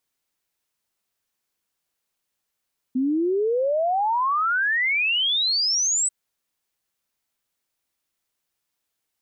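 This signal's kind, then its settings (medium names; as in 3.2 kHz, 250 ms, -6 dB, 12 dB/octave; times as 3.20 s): log sweep 250 Hz -> 8.1 kHz 3.14 s -19 dBFS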